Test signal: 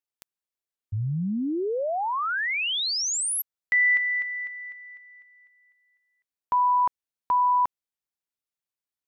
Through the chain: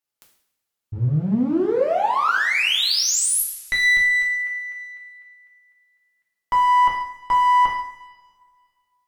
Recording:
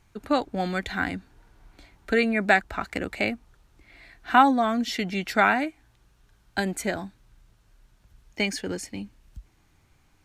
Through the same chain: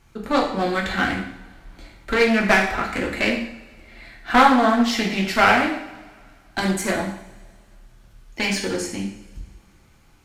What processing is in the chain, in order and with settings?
one-sided clip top -26.5 dBFS; two-slope reverb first 0.64 s, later 2.1 s, from -19 dB, DRR -2 dB; Doppler distortion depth 0.18 ms; gain +3.5 dB

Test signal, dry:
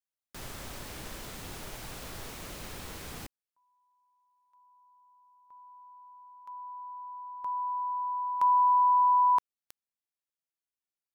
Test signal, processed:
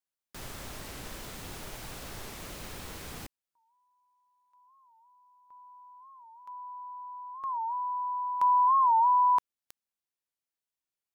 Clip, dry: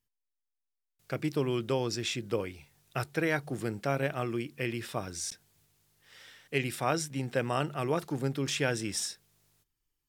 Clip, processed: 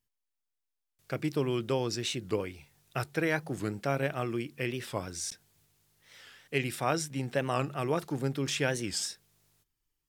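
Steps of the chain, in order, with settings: record warp 45 rpm, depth 160 cents

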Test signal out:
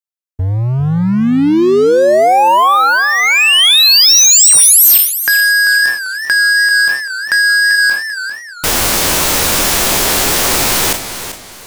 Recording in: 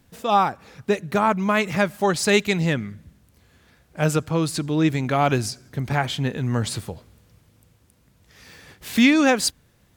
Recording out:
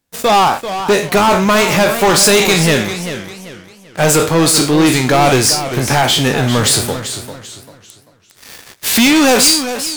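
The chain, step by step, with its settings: spectral trails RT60 0.32 s; tone controls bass -8 dB, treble +5 dB; sample leveller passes 5; dynamic EQ 1800 Hz, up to -5 dB, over -17 dBFS, Q 2.4; warbling echo 0.394 s, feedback 33%, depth 136 cents, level -10.5 dB; gain -2.5 dB

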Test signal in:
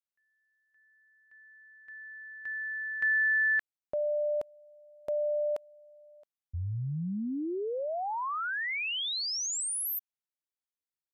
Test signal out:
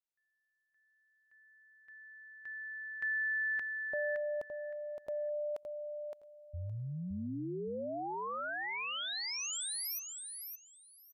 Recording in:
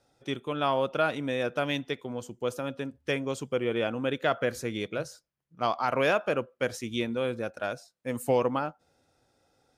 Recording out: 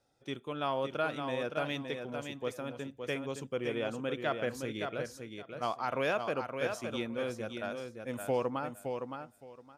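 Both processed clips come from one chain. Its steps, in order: feedback echo 0.566 s, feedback 19%, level -6 dB; gain -6.5 dB

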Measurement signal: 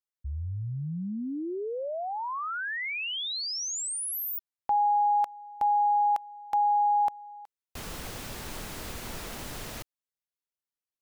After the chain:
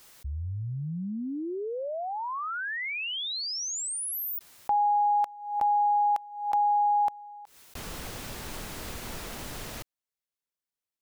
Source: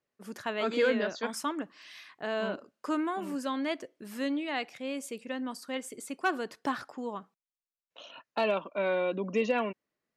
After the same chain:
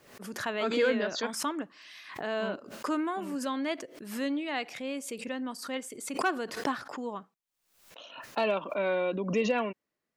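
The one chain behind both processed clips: backwards sustainer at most 84 dB/s

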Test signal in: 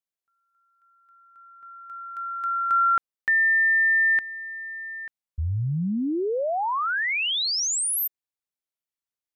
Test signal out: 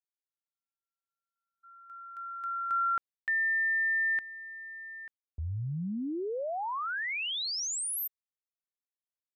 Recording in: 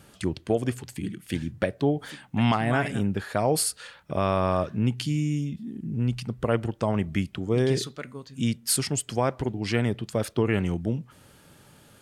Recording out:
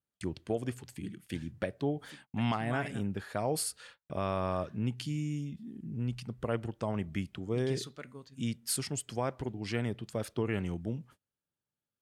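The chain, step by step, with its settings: gate -45 dBFS, range -33 dB; gain -8.5 dB

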